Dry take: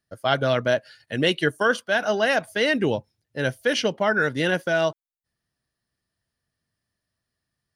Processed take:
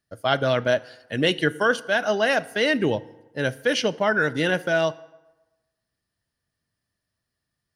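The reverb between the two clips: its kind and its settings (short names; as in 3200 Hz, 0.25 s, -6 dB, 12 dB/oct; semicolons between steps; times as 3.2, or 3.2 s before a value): FDN reverb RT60 1.1 s, low-frequency decay 0.9×, high-frequency decay 0.65×, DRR 17 dB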